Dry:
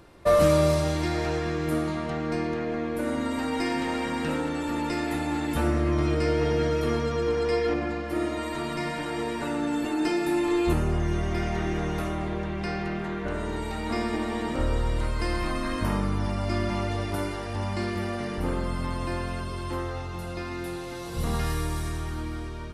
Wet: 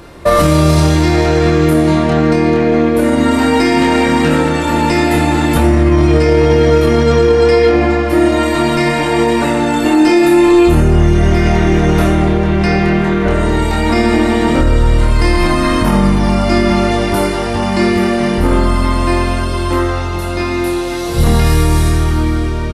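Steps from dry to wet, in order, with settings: doubler 26 ms -3.5 dB; maximiser +16 dB; gain -1 dB

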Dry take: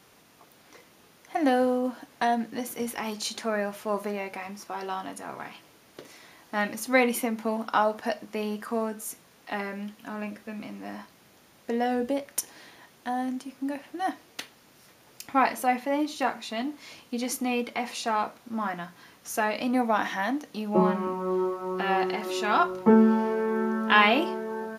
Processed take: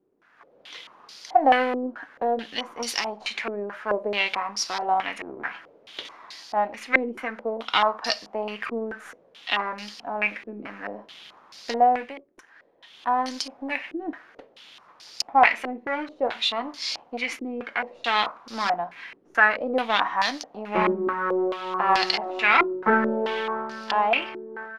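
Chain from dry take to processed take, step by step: half-wave gain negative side -7 dB; tilt +4 dB/oct; AGC gain up to 12 dB; stepped low-pass 4.6 Hz 360–4800 Hz; gain -5.5 dB

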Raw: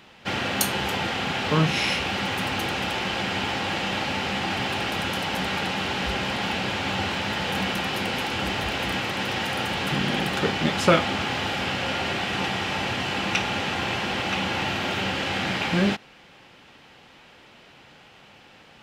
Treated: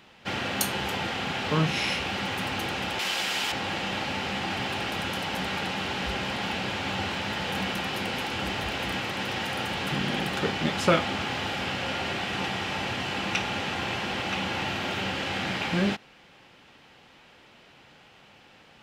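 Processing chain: 2.99–3.52 RIAA curve recording; gain -3.5 dB

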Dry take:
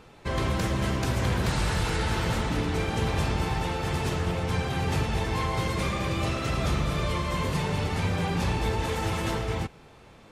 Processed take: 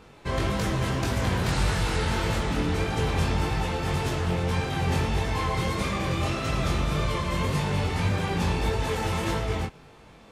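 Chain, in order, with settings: chorus 1.7 Hz, delay 19.5 ms, depth 3.9 ms; gain +4 dB

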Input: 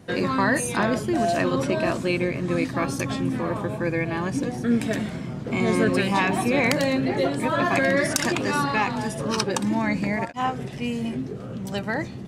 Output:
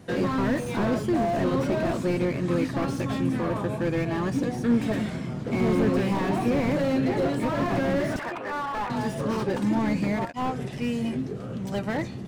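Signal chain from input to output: 8.19–8.9 three-band isolator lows -18 dB, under 530 Hz, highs -23 dB, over 2100 Hz; slew limiter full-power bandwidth 42 Hz

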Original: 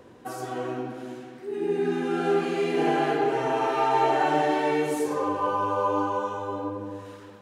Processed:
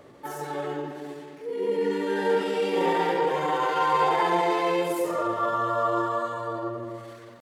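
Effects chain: pitch shift +2.5 st

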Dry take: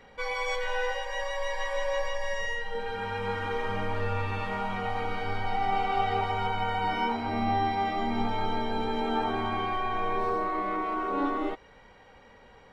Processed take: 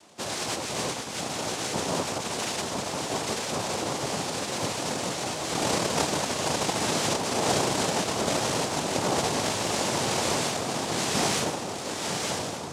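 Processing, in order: diffused feedback echo 1.042 s, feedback 65%, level -4 dB; noise vocoder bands 2

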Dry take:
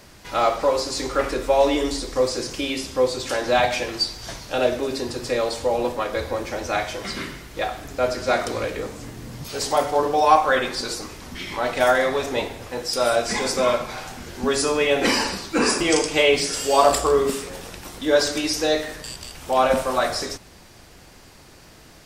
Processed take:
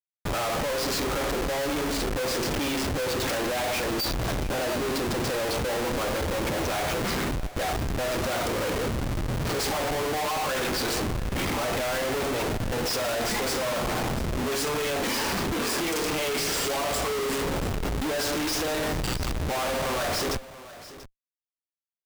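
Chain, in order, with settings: Schmitt trigger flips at -32.5 dBFS; on a send: echo 0.686 s -16.5 dB; on the sum: gain -4.5 dB

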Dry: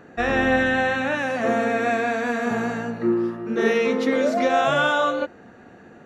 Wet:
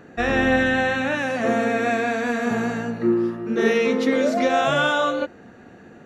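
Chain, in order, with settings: bell 950 Hz -3.5 dB 2.1 oct; gain +2.5 dB

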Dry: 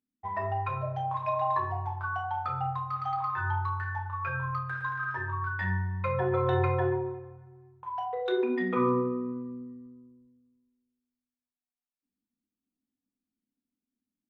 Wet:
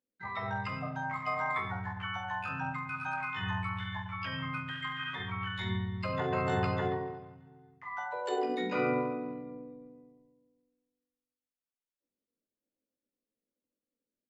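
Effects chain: high shelf 3600 Hz -4 dB; harmoniser -5 st -17 dB, +3 st -2 dB, +12 st -1 dB; gain -8 dB

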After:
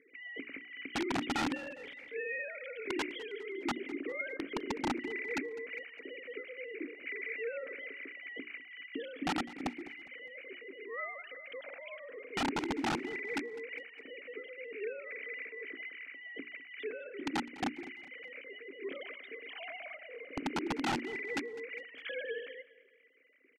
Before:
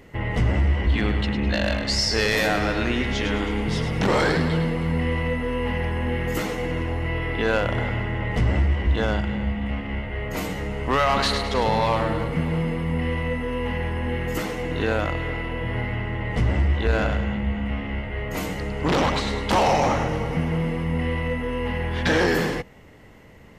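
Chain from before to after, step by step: sine-wave speech; vowel filter i; low shelf 470 Hz +11 dB; notches 60/120/180/240/300/360/420 Hz; wrapped overs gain 22.5 dB; air absorption 82 m; feedback echo 0.204 s, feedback 43%, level -19 dB; gain -4 dB

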